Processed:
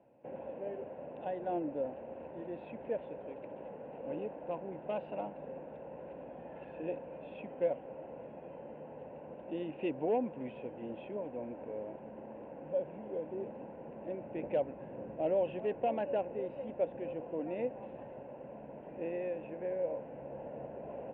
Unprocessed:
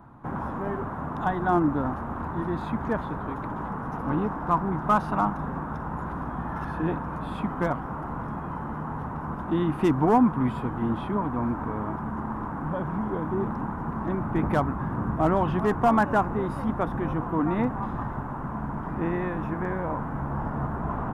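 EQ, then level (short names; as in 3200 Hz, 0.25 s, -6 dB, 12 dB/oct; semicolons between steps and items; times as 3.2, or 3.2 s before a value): double band-pass 1200 Hz, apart 2.3 oct; air absorption 440 m; +4.5 dB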